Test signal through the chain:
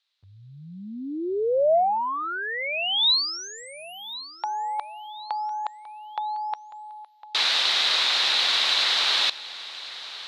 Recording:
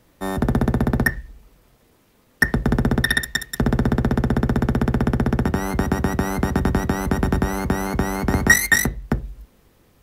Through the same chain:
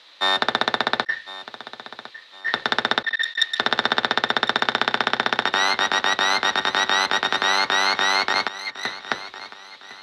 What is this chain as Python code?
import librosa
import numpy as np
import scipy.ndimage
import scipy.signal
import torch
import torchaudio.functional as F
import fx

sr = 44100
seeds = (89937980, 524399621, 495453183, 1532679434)

y = scipy.signal.sosfilt(scipy.signal.butter(2, 980.0, 'highpass', fs=sr, output='sos'), x)
y = fx.over_compress(y, sr, threshold_db=-31.0, ratio=-0.5)
y = fx.lowpass_res(y, sr, hz=3900.0, q=5.4)
y = fx.echo_feedback(y, sr, ms=1056, feedback_pct=38, wet_db=-16.0)
y = y * librosa.db_to_amplitude(6.5)